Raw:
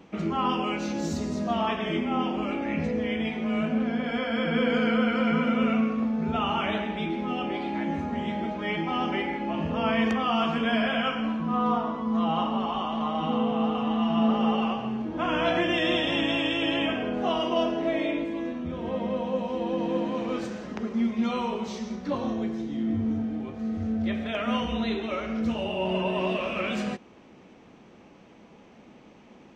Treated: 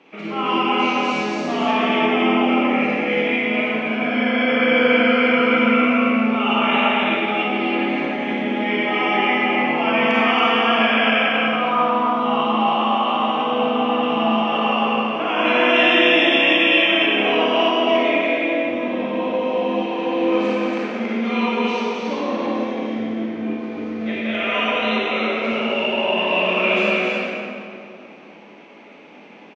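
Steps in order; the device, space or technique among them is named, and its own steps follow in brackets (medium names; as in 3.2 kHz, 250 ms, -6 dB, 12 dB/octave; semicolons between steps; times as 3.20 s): station announcement (band-pass 350–4800 Hz; peaking EQ 2.4 kHz +8 dB 0.6 oct; loudspeakers at several distances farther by 60 m -11 dB, 96 m -3 dB; reverberation RT60 2.6 s, pre-delay 31 ms, DRR -6.5 dB)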